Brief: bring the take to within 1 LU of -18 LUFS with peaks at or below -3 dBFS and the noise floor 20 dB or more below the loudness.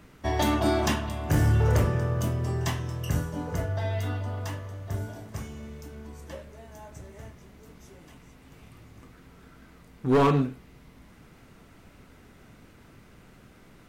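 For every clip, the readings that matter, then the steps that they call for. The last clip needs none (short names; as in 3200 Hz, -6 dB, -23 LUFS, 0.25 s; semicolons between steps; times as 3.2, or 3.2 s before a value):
clipped 0.8%; flat tops at -16.5 dBFS; loudness -27.5 LUFS; peak -16.5 dBFS; loudness target -18.0 LUFS
-> clip repair -16.5 dBFS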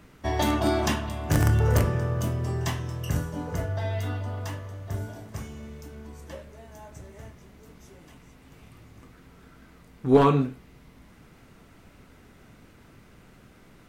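clipped 0.0%; loudness -26.5 LUFS; peak -7.5 dBFS; loudness target -18.0 LUFS
-> gain +8.5 dB; limiter -3 dBFS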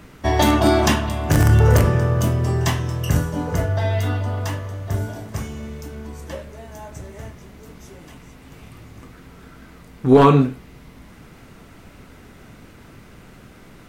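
loudness -18.5 LUFS; peak -3.0 dBFS; noise floor -45 dBFS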